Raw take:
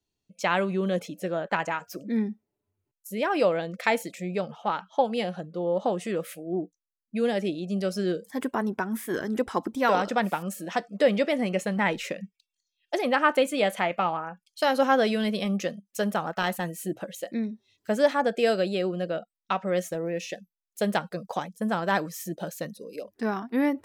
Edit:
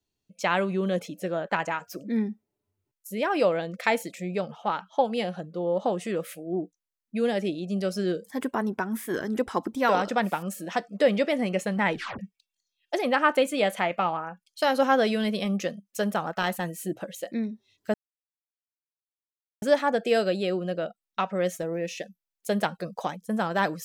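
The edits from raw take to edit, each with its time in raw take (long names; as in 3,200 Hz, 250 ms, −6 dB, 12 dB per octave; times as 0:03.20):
0:11.94: tape stop 0.25 s
0:17.94: splice in silence 1.68 s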